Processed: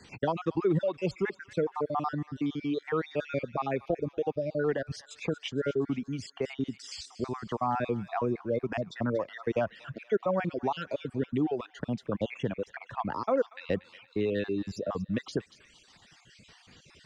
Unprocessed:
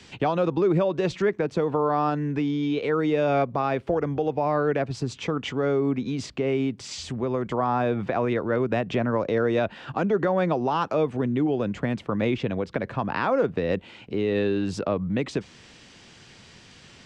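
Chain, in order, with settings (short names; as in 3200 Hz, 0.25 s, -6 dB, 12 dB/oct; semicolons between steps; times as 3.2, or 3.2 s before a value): random spectral dropouts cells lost 47%; reverb removal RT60 1.4 s; on a send: thin delay 0.235 s, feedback 48%, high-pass 1600 Hz, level -13.5 dB; on the sum: gain -3 dB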